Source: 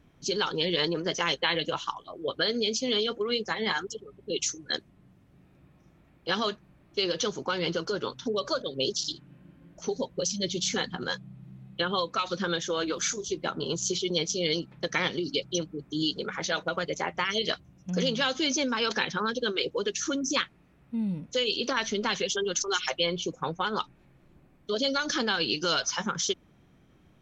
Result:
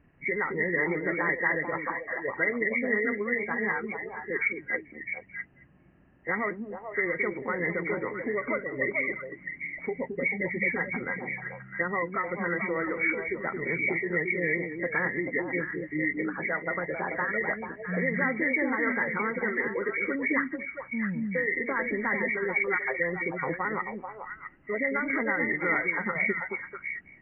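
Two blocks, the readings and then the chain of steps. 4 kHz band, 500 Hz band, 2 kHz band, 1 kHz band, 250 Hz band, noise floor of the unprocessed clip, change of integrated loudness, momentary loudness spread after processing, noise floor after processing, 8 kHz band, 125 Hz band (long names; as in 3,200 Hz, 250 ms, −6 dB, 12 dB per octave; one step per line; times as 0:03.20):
below −40 dB, −0.5 dB, +7.0 dB, −1.0 dB, +0.5 dB, −60 dBFS, 0.0 dB, 9 LU, −54 dBFS, below −40 dB, −1.0 dB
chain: hearing-aid frequency compression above 1,600 Hz 4 to 1
echo through a band-pass that steps 219 ms, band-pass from 260 Hz, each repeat 1.4 octaves, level −0.5 dB
level −2 dB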